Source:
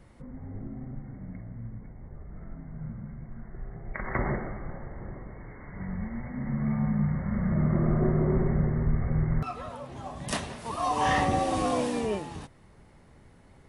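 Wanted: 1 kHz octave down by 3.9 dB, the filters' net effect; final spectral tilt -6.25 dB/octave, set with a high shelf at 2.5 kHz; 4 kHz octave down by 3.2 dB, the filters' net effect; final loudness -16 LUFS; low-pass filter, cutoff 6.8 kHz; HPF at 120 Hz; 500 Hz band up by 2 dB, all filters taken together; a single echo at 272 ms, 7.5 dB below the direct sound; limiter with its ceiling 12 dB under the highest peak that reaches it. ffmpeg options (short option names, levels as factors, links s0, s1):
-af "highpass=120,lowpass=6800,equalizer=f=500:t=o:g=4.5,equalizer=f=1000:t=o:g=-8.5,highshelf=f=2500:g=5.5,equalizer=f=4000:t=o:g=-8.5,alimiter=level_in=1.19:limit=0.0631:level=0:latency=1,volume=0.841,aecho=1:1:272:0.422,volume=8.91"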